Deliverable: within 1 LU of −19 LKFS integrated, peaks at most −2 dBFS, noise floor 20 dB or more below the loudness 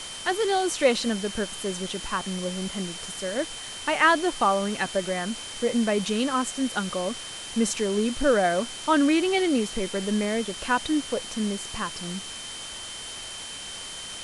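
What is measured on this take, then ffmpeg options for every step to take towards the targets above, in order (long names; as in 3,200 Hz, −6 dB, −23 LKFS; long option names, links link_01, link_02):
interfering tone 3,100 Hz; level of the tone −39 dBFS; background noise floor −38 dBFS; target noise floor −47 dBFS; integrated loudness −26.5 LKFS; sample peak −8.0 dBFS; target loudness −19.0 LKFS
→ -af "bandreject=frequency=3100:width=30"
-af "afftdn=noise_reduction=9:noise_floor=-38"
-af "volume=7.5dB,alimiter=limit=-2dB:level=0:latency=1"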